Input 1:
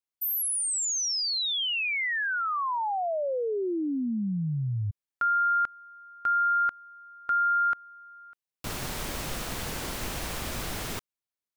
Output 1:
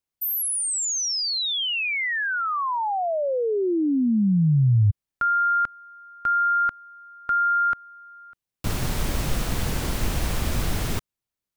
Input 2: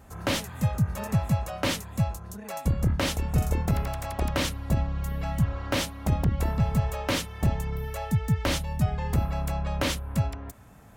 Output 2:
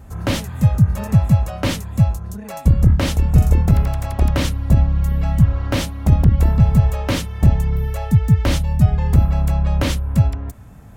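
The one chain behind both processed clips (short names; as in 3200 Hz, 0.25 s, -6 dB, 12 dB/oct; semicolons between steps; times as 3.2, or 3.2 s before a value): low shelf 230 Hz +11 dB; gain +3 dB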